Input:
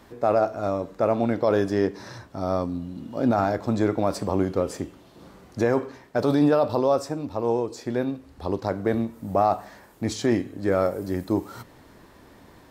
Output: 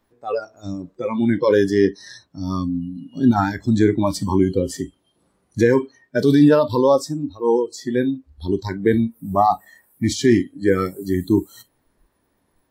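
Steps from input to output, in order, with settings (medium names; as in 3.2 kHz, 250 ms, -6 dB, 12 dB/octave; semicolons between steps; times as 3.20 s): spectral noise reduction 25 dB; trim +7.5 dB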